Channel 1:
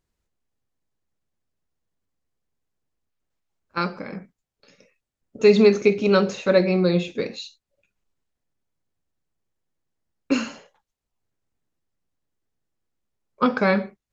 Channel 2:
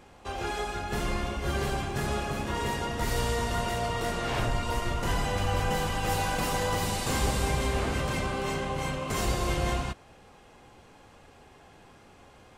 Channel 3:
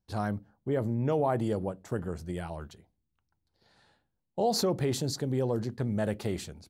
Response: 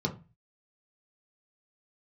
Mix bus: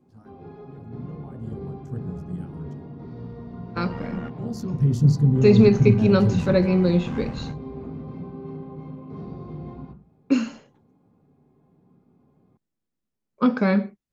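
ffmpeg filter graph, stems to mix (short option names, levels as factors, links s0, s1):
-filter_complex "[0:a]volume=0.531,asplit=2[s0][s1];[1:a]lowpass=1900,volume=0.891,asplit=2[s2][s3];[s3]volume=0.075[s4];[2:a]asubboost=boost=6:cutoff=120,afade=t=in:st=1.13:d=0.77:silence=0.266073,afade=t=in:st=4.71:d=0.32:silence=0.298538,asplit=2[s5][s6];[s6]volume=0.224[s7];[s1]apad=whole_len=554404[s8];[s2][s8]sidechaingate=range=0.0224:threshold=0.00398:ratio=16:detection=peak[s9];[s9][s5]amix=inputs=2:normalize=0,tremolo=f=76:d=0.667,alimiter=level_in=1.19:limit=0.0631:level=0:latency=1:release=271,volume=0.841,volume=1[s10];[3:a]atrim=start_sample=2205[s11];[s4][s7]amix=inputs=2:normalize=0[s12];[s12][s11]afir=irnorm=-1:irlink=0[s13];[s0][s10][s13]amix=inputs=3:normalize=0,equalizer=f=220:t=o:w=1.3:g=9.5"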